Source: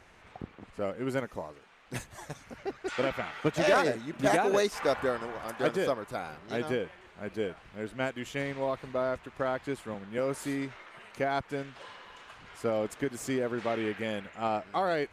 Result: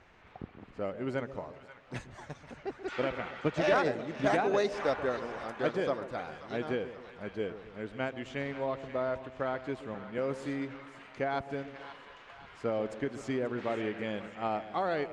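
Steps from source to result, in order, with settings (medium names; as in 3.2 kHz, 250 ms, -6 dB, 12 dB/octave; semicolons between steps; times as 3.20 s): distance through air 110 m; two-band feedback delay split 780 Hz, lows 133 ms, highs 534 ms, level -12.5 dB; trim -2 dB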